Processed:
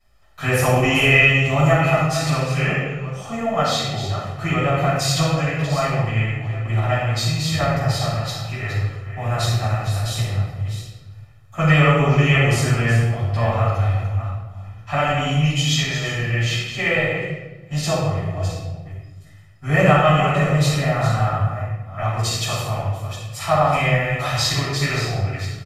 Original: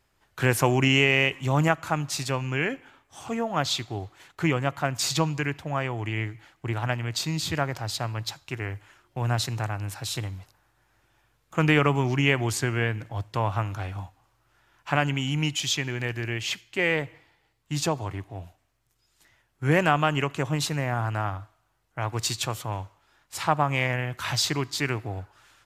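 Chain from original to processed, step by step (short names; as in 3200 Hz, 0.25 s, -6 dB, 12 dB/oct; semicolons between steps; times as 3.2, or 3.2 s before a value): reverse delay 0.386 s, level -10 dB; comb 1.6 ms, depth 61%; shoebox room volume 520 m³, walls mixed, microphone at 8.5 m; gain -11 dB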